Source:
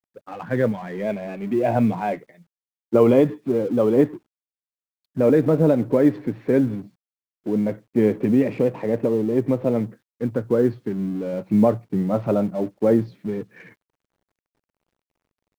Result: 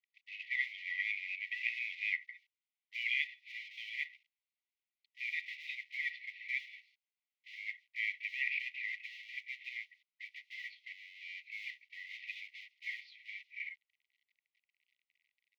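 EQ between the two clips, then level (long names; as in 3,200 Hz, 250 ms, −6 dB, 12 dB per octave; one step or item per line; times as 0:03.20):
linear-phase brick-wall high-pass 1,900 Hz
high-frequency loss of the air 280 metres
high-shelf EQ 3,300 Hz −10 dB
+14.5 dB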